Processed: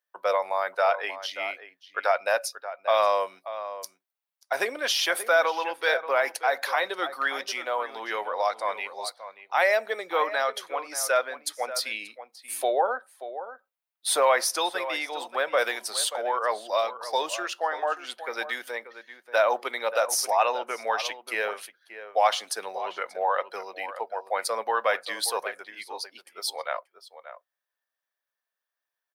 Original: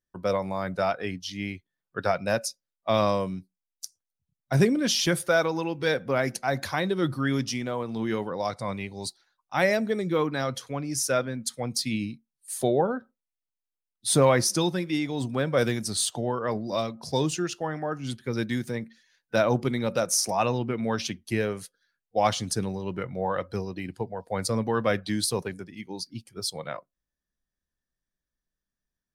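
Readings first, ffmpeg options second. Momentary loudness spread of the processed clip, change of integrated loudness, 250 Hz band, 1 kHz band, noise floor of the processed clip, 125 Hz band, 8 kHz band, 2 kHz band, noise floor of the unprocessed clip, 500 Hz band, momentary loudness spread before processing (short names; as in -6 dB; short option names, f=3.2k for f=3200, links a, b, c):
14 LU, 0.0 dB, -18.5 dB, +5.0 dB, under -85 dBFS, under -40 dB, -1.5 dB, +4.5 dB, under -85 dBFS, 0.0 dB, 13 LU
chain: -filter_complex "[0:a]highpass=f=610:w=0.5412,highpass=f=610:w=1.3066,equalizer=f=6.8k:t=o:w=1.4:g=-10.5,asplit=2[a][b];[b]alimiter=limit=-22.5dB:level=0:latency=1:release=47,volume=2dB[c];[a][c]amix=inputs=2:normalize=0,asplit=2[d][e];[e]adelay=583.1,volume=-12dB,highshelf=f=4k:g=-13.1[f];[d][f]amix=inputs=2:normalize=0"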